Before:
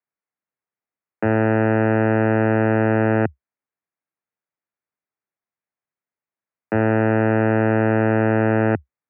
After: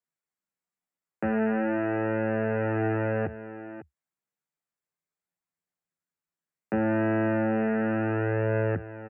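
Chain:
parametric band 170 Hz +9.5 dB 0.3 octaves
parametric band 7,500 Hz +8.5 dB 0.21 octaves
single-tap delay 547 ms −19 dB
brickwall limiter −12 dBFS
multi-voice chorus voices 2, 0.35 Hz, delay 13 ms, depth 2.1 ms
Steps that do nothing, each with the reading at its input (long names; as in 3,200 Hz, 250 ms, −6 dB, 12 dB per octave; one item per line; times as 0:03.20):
parametric band 7,500 Hz: nothing at its input above 1,900 Hz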